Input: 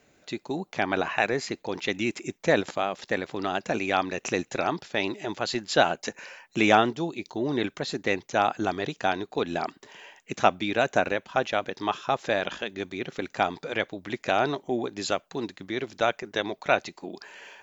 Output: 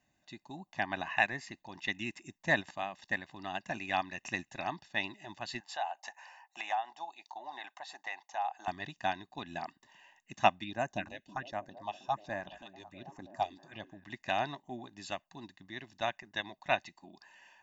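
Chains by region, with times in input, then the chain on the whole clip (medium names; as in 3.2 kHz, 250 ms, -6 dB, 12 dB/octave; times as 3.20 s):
5.60–8.68 s: resonant high-pass 790 Hz, resonance Q 4.4 + compression 3:1, threshold -28 dBFS
10.64–14.04 s: phase shifter stages 4, 1.3 Hz, lowest notch 160–3700 Hz + repeats whose band climbs or falls 323 ms, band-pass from 260 Hz, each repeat 0.7 oct, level -7 dB
whole clip: dynamic bell 2.1 kHz, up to +5 dB, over -40 dBFS, Q 1.4; comb 1.1 ms, depth 85%; upward expansion 1.5:1, over -30 dBFS; trim -7 dB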